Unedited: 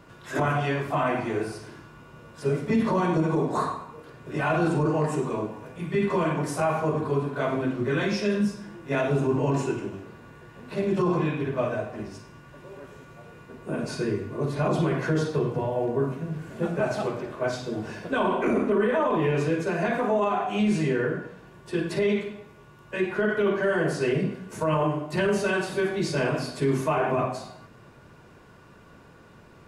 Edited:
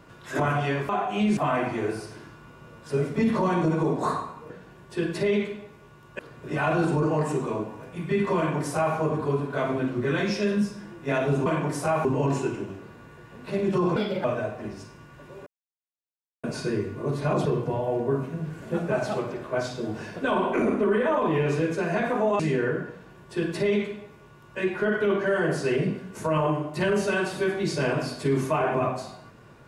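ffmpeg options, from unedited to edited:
-filter_complex "[0:a]asplit=13[s0][s1][s2][s3][s4][s5][s6][s7][s8][s9][s10][s11][s12];[s0]atrim=end=0.892[s13];[s1]atrim=start=20.278:end=20.762[s14];[s2]atrim=start=0.888:end=4.022[s15];[s3]atrim=start=21.258:end=22.952[s16];[s4]atrim=start=4.018:end=9.292[s17];[s5]atrim=start=6.198:end=6.792[s18];[s6]atrim=start=9.288:end=11.204[s19];[s7]atrim=start=11.2:end=11.59,asetpts=PTS-STARTPTS,asetrate=60417,aresample=44100,atrim=end_sample=12554,asetpts=PTS-STARTPTS[s20];[s8]atrim=start=11.586:end=12.81,asetpts=PTS-STARTPTS,afade=t=out:st=1.22:d=0.004:c=hsin[s21];[s9]atrim=start=12.81:end=13.78,asetpts=PTS-STARTPTS,volume=0[s22];[s10]atrim=start=13.78:end=14.802,asetpts=PTS-STARTPTS,afade=t=in:d=0.004:c=hsin[s23];[s11]atrim=start=15.338:end=20.282[s24];[s12]atrim=start=20.758[s25];[s13][s14]acrossfade=d=0.004:c1=hsin:c2=hsin[s26];[s26][s15]acrossfade=d=0.004:c1=hsin:c2=hsin[s27];[s27][s16]acrossfade=d=0.004:c1=hsin:c2=hsin[s28];[s28][s17]acrossfade=d=0.004:c1=hsin:c2=hsin[s29];[s29][s18]acrossfade=d=0.004:c1=hsin:c2=hsin[s30];[s30][s19]acrossfade=d=0.004:c1=hsin:c2=hsin[s31];[s31][s20]acrossfade=d=0.004:c1=hsin:c2=hsin[s32];[s21][s22][s23]concat=n=3:v=0:a=1[s33];[s32][s33]acrossfade=d=0.004:c1=hsin:c2=hsin[s34];[s34][s24]acrossfade=d=0.004:c1=hsin:c2=hsin[s35];[s35][s25]acrossfade=d=0.004:c1=hsin:c2=hsin"

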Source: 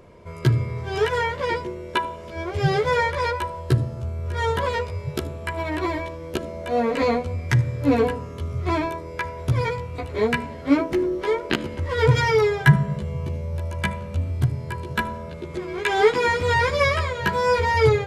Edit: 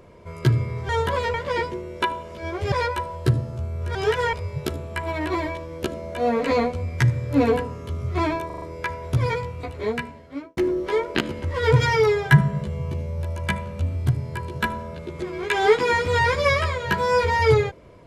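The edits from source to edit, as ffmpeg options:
-filter_complex "[0:a]asplit=11[s0][s1][s2][s3][s4][s5][s6][s7][s8][s9][s10];[s0]atrim=end=0.892[s11];[s1]atrim=start=4.388:end=4.842[s12];[s2]atrim=start=1.268:end=2.652[s13];[s3]atrim=start=3.158:end=4.392[s14];[s4]atrim=start=0.888:end=1.272[s15];[s5]atrim=start=4.838:end=9.012[s16];[s6]atrim=start=8.968:end=9.012[s17];[s7]atrim=start=8.968:end=9.012[s18];[s8]atrim=start=8.968:end=9.012[s19];[s9]atrim=start=8.968:end=10.92,asetpts=PTS-STARTPTS,afade=t=out:st=0.842:d=1.11[s20];[s10]atrim=start=10.92,asetpts=PTS-STARTPTS,afade=t=in:d=0.004:c=hsin[s21];[s11][s12]acrossfade=d=0.004:c1=hsin:c2=hsin[s22];[s22][s13]acrossfade=d=0.004:c1=hsin:c2=hsin[s23];[s23][s14]acrossfade=d=0.004:c1=hsin:c2=hsin[s24];[s24][s15]acrossfade=d=0.004:c1=hsin:c2=hsin[s25];[s25][s16]acrossfade=d=0.004:c1=hsin:c2=hsin[s26];[s26][s17]acrossfade=d=0.004:c1=hsin:c2=hsin[s27];[s27][s18]acrossfade=d=0.004:c1=hsin:c2=hsin[s28];[s28][s19]acrossfade=d=0.004:c1=hsin:c2=hsin[s29];[s20][s21]concat=n=2:v=0:a=1[s30];[s29][s30]acrossfade=d=0.004:c1=hsin:c2=hsin"

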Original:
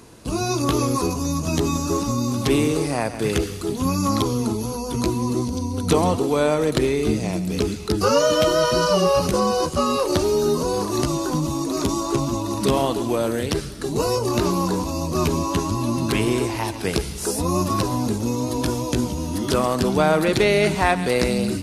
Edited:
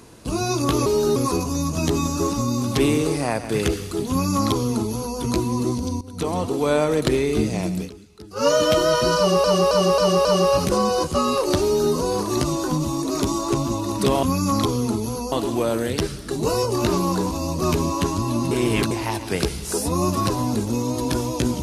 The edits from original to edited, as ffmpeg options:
-filter_complex "[0:a]asplit=14[s0][s1][s2][s3][s4][s5][s6][s7][s8][s9][s10][s11][s12][s13];[s0]atrim=end=0.862[s14];[s1]atrim=start=10.248:end=10.552[s15];[s2]atrim=start=0.858:end=5.71,asetpts=PTS-STARTPTS,afade=t=out:st=4.848:d=0.004:c=hsin:silence=0.141254[s16];[s3]atrim=start=5.71:end=7.6,asetpts=PTS-STARTPTS,afade=t=in:d=0.72:silence=0.141254,afade=t=out:st=1.77:d=0.12:silence=0.105925[s17];[s4]atrim=start=7.6:end=8.05,asetpts=PTS-STARTPTS,volume=0.106[s18];[s5]atrim=start=8.05:end=9.142,asetpts=PTS-STARTPTS,afade=t=in:d=0.12:silence=0.105925[s19];[s6]atrim=start=8.868:end=9.142[s20];[s7]atrim=start=8.868:end=9.142[s21];[s8]atrim=start=8.868:end=9.142[s22];[s9]atrim=start=8.868:end=12.852[s23];[s10]atrim=start=3.798:end=4.892[s24];[s11]atrim=start=12.848:end=16.042[s25];[s12]atrim=start=16.038:end=16.442,asetpts=PTS-STARTPTS,areverse[s26];[s13]atrim=start=16.438[s27];[s14][s15]acrossfade=d=0.004:c1=hsin:c2=hsin[s28];[s16][s17][s18][s19]concat=n=4:v=0:a=1[s29];[s28][s29]acrossfade=d=0.004:c1=hsin:c2=hsin[s30];[s30][s20]acrossfade=d=0.004:c1=hsin:c2=hsin[s31];[s31][s21]acrossfade=d=0.004:c1=hsin:c2=hsin[s32];[s32][s22]acrossfade=d=0.004:c1=hsin:c2=hsin[s33];[s33][s23]acrossfade=d=0.004:c1=hsin:c2=hsin[s34];[s34][s24]acrossfade=d=0.004:c1=hsin:c2=hsin[s35];[s35][s25]acrossfade=d=0.004:c1=hsin:c2=hsin[s36];[s36][s26]acrossfade=d=0.004:c1=hsin:c2=hsin[s37];[s37][s27]acrossfade=d=0.004:c1=hsin:c2=hsin"

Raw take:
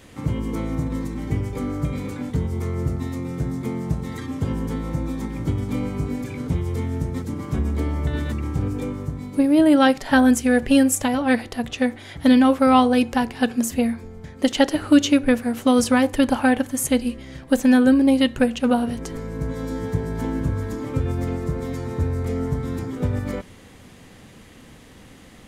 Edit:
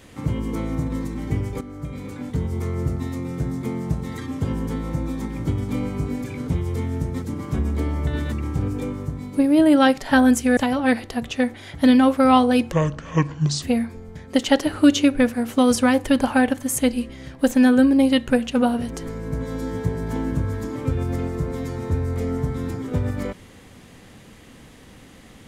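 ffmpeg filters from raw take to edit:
-filter_complex "[0:a]asplit=5[s0][s1][s2][s3][s4];[s0]atrim=end=1.61,asetpts=PTS-STARTPTS,afade=t=out:st=1.606:d=0.004:c=hsin:silence=0.237137[s5];[s1]atrim=start=1.61:end=10.572,asetpts=PTS-STARTPTS,afade=t=in:d=0.92:silence=0.237137[s6];[s2]atrim=start=10.988:end=13.144[s7];[s3]atrim=start=13.14:end=13.71,asetpts=PTS-STARTPTS,asetrate=27783,aresample=44100[s8];[s4]atrim=start=13.706[s9];[s5][s6]concat=n=2:v=0:a=1[s10];[s10][s7]acrossfade=d=0.004:c1=hsin:c2=hsin[s11];[s11][s8]acrossfade=d=0.004:c1=hsin:c2=hsin[s12];[s12][s9]acrossfade=d=0.004:c1=hsin:c2=hsin"

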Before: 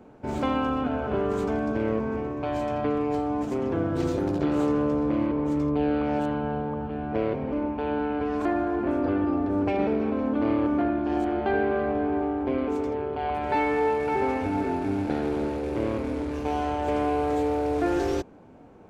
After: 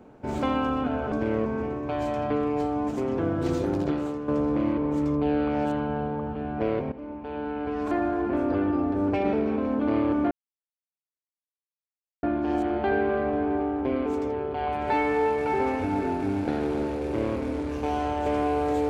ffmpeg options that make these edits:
-filter_complex "[0:a]asplit=5[s0][s1][s2][s3][s4];[s0]atrim=end=1.122[s5];[s1]atrim=start=1.658:end=4.82,asetpts=PTS-STARTPTS,afade=t=out:st=2.742:d=0.42:c=qua:silence=0.316228[s6];[s2]atrim=start=4.82:end=7.46,asetpts=PTS-STARTPTS,afade=t=in:d=0.004:c=hsin:silence=0.316228,afade=t=out:st=2.636:d=0.004:c=hsin:silence=0.223872[s7];[s3]atrim=start=7.46:end=10.85,asetpts=PTS-STARTPTS,afade=t=in:d=1.12:silence=0.223872,afade=t=out:st=3.386:d=0.004:c=hsin,apad=pad_dur=1.92[s8];[s4]atrim=start=10.85,asetpts=PTS-STARTPTS,afade=t=in:d=0.004:c=hsin[s9];[s6][s7][s8][s9]concat=n=4:v=0:a=1[s10];[s5][s10]acrossfade=d=0.004:c1=hsin:c2=hsin"

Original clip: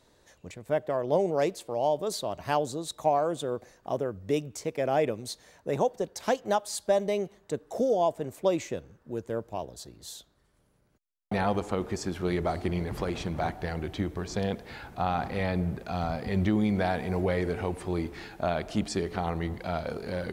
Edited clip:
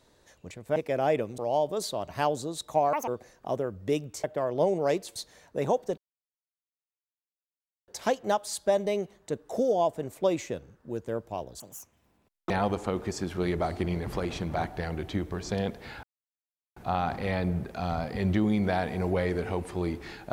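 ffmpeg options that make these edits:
-filter_complex "[0:a]asplit=11[s0][s1][s2][s3][s4][s5][s6][s7][s8][s9][s10];[s0]atrim=end=0.762[s11];[s1]atrim=start=4.648:end=5.272[s12];[s2]atrim=start=1.678:end=3.234[s13];[s3]atrim=start=3.23:end=3.49,asetpts=PTS-STARTPTS,asetrate=78057,aresample=44100[s14];[s4]atrim=start=3.486:end=4.652[s15];[s5]atrim=start=0.758:end=1.682[s16];[s6]atrim=start=5.268:end=6.09,asetpts=PTS-STARTPTS,afade=t=out:st=0.818:d=0.004:c=hsin,apad=pad_dur=1.9[s17];[s7]atrim=start=6.09:end=9.814,asetpts=PTS-STARTPTS,afade=t=in:d=0.004:c=hsin[s18];[s8]atrim=start=9.81:end=11.35,asetpts=PTS-STARTPTS,asetrate=74970,aresample=44100,atrim=end_sample=39949,asetpts=PTS-STARTPTS[s19];[s9]atrim=start=11.346:end=14.88,asetpts=PTS-STARTPTS,afade=t=out:st=3.53:d=0.004:c=hsin,apad=pad_dur=0.73[s20];[s10]atrim=start=14.88,asetpts=PTS-STARTPTS,afade=t=in:d=0.004:c=hsin[s21];[s11][s12]acrossfade=d=0.004:c1=hsin:c2=hsin[s22];[s22][s13]acrossfade=d=0.004:c1=hsin:c2=hsin[s23];[s23][s14]acrossfade=d=0.004:c1=hsin:c2=hsin[s24];[s24][s15]acrossfade=d=0.004:c1=hsin:c2=hsin[s25];[s25][s16]acrossfade=d=0.004:c1=hsin:c2=hsin[s26];[s17][s18]concat=n=2:v=0:a=1[s27];[s26][s27]acrossfade=d=0.004:c1=hsin:c2=hsin[s28];[s28][s19]acrossfade=d=0.004:c1=hsin:c2=hsin[s29];[s20][s21]concat=n=2:v=0:a=1[s30];[s29][s30]acrossfade=d=0.004:c1=hsin:c2=hsin"

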